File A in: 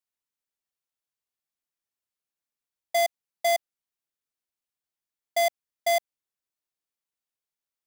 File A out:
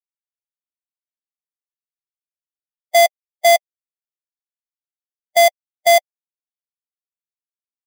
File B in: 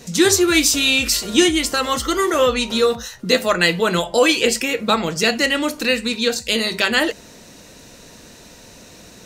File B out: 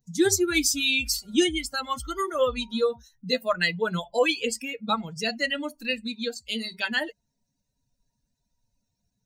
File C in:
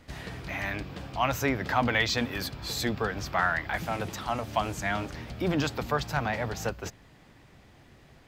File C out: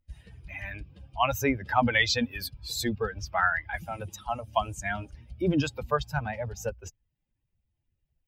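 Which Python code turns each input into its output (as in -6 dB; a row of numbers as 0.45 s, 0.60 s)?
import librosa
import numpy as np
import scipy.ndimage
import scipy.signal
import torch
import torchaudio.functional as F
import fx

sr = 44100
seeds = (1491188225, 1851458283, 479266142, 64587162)

y = fx.bin_expand(x, sr, power=2.0)
y = librosa.util.normalize(y) * 10.0 ** (-9 / 20.0)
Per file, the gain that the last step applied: +12.0 dB, -4.5 dB, +5.0 dB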